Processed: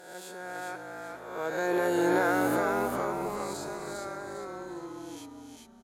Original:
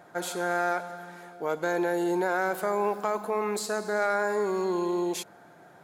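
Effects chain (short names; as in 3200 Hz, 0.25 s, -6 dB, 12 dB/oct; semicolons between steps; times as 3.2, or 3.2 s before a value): spectral swells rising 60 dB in 1.04 s; Doppler pass-by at 2.06, 11 m/s, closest 4.4 m; frequency-shifting echo 0.402 s, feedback 37%, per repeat -54 Hz, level -3.5 dB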